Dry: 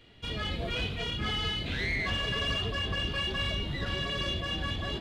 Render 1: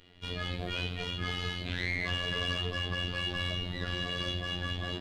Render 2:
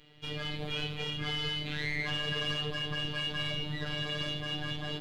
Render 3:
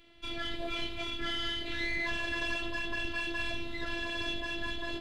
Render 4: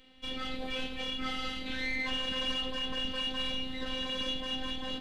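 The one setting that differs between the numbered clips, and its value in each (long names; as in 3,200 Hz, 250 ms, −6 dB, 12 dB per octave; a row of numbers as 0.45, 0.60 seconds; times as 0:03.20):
phases set to zero, frequency: 89, 150, 340, 260 Hertz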